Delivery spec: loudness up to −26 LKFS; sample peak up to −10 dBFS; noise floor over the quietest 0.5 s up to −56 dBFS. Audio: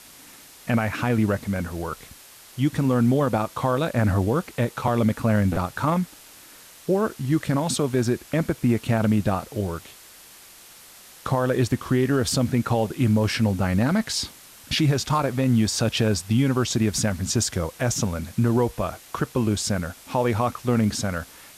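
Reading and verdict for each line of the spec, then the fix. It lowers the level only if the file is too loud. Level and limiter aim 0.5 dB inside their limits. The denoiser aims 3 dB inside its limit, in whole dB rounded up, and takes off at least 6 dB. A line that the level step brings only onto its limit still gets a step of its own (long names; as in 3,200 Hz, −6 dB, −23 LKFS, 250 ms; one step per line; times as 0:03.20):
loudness −23.5 LKFS: out of spec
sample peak −11.5 dBFS: in spec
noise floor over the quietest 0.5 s −47 dBFS: out of spec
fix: broadband denoise 9 dB, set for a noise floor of −47 dBFS
level −3 dB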